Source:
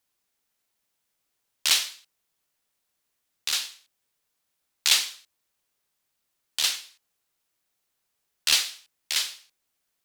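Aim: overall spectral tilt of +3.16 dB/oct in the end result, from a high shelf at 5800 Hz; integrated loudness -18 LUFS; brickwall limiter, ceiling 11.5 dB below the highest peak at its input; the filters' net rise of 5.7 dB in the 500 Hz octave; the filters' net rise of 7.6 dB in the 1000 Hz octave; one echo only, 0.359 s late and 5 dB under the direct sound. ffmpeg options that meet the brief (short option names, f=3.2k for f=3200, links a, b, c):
-af "equalizer=f=500:t=o:g=4,equalizer=f=1k:t=o:g=8.5,highshelf=f=5.8k:g=9,alimiter=limit=-11dB:level=0:latency=1,aecho=1:1:359:0.562,volume=7.5dB"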